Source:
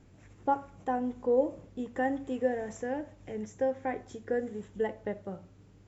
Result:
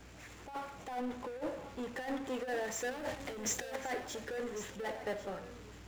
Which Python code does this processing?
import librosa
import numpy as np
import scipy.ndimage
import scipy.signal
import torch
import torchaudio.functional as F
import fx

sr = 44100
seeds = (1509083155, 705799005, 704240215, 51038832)

y = fx.highpass(x, sr, hz=1200.0, slope=6)
y = fx.high_shelf(y, sr, hz=5100.0, db=-8.0)
y = fx.leveller(y, sr, passes=5, at=(2.91, 3.76))
y = fx.over_compress(y, sr, threshold_db=-40.0, ratio=-0.5)
y = fx.add_hum(y, sr, base_hz=60, snr_db=28)
y = fx.power_curve(y, sr, exponent=0.5)
y = y + 10.0 ** (-11.5 / 20.0) * np.pad(y, (int(1100 * sr / 1000.0), 0))[:len(y)]
y = fx.band_widen(y, sr, depth_pct=40)
y = y * 10.0 ** (-4.0 / 20.0)